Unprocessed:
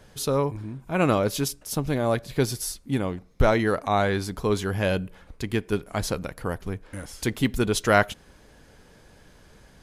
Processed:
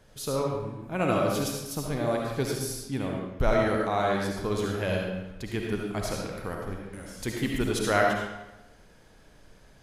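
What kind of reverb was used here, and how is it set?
comb and all-pass reverb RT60 0.98 s, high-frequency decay 0.8×, pre-delay 30 ms, DRR −1 dB
level −6.5 dB

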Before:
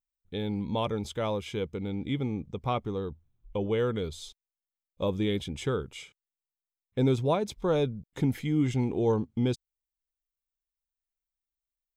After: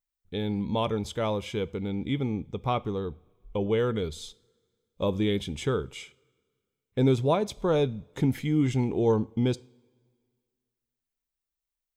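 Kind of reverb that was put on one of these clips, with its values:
coupled-rooms reverb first 0.45 s, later 2 s, from −19 dB, DRR 17.5 dB
level +2 dB

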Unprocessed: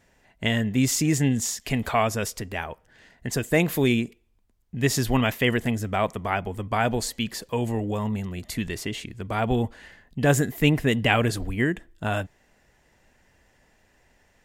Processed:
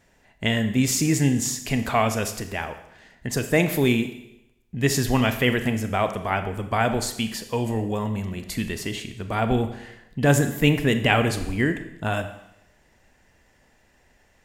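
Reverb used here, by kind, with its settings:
four-comb reverb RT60 0.86 s, combs from 28 ms, DRR 8.5 dB
level +1 dB

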